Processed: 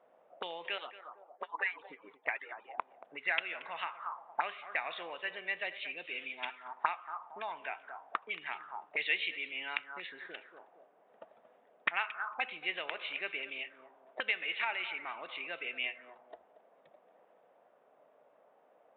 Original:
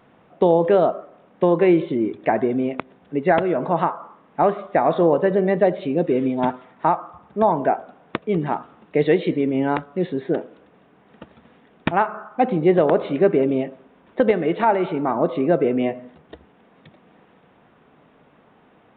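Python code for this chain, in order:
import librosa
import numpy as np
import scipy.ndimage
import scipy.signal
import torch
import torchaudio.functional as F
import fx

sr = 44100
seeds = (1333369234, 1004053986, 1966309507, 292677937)

y = fx.hpss_only(x, sr, part='percussive', at=(0.78, 2.78))
y = fx.echo_tape(y, sr, ms=229, feedback_pct=22, wet_db=-14.0, lp_hz=2600.0, drive_db=3.0, wow_cents=9)
y = fx.auto_wah(y, sr, base_hz=570.0, top_hz=2600.0, q=4.0, full_db=-18.0, direction='up')
y = fx.tilt_shelf(y, sr, db=-8.0, hz=910.0)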